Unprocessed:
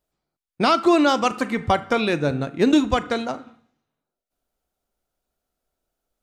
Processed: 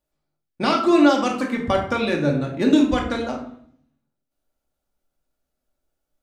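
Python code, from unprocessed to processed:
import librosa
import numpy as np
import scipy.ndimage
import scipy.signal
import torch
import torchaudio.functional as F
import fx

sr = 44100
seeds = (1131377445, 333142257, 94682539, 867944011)

y = fx.room_shoebox(x, sr, seeds[0], volume_m3=750.0, walls='furnished', distance_m=2.4)
y = y * librosa.db_to_amplitude(-4.0)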